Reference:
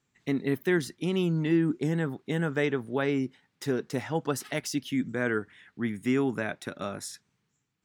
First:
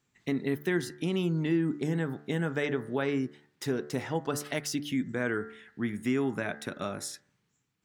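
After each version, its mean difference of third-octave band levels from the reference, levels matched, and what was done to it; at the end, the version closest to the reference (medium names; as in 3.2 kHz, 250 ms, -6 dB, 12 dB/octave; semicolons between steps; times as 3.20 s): 2.5 dB: de-hum 73.15 Hz, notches 28; compression 1.5:1, threshold -31 dBFS, peak gain reduction 4.5 dB; trim +1 dB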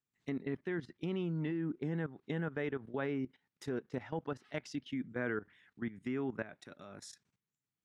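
4.0 dB: low-pass that closes with the level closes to 2.7 kHz, closed at -27 dBFS; level held to a coarse grid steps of 15 dB; trim -5.5 dB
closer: first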